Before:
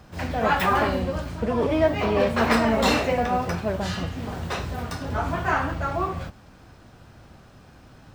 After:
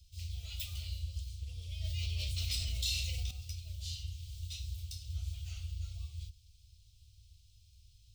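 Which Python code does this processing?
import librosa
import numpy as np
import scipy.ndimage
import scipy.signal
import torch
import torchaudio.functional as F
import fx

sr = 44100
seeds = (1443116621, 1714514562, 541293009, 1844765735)

y = scipy.signal.sosfilt(scipy.signal.cheby2(4, 40, [170.0, 1800.0], 'bandstop', fs=sr, output='sos'), x)
y = fx.env_flatten(y, sr, amount_pct=70, at=(1.84, 3.31))
y = F.gain(torch.from_numpy(y), -6.0).numpy()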